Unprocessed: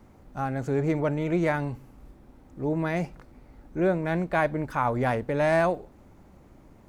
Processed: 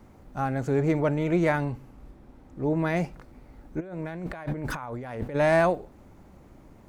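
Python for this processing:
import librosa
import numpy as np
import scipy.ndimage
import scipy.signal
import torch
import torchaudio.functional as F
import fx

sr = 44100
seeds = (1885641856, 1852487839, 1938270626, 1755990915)

y = fx.high_shelf(x, sr, hz=fx.line((1.63, 5900.0), (2.82, 8800.0)), db=-6.0, at=(1.63, 2.82), fade=0.02)
y = fx.over_compress(y, sr, threshold_db=-36.0, ratio=-1.0, at=(3.79, 5.34), fade=0.02)
y = F.gain(torch.from_numpy(y), 1.5).numpy()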